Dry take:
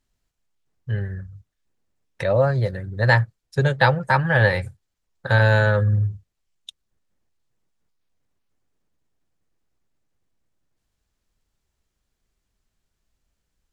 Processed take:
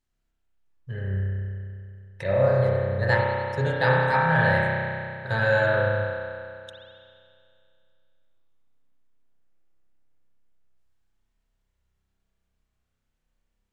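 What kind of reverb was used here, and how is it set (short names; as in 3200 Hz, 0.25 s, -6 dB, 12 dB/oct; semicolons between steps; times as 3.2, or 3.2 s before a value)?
spring tank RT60 2.4 s, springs 31 ms, chirp 70 ms, DRR -5 dB; gain -8 dB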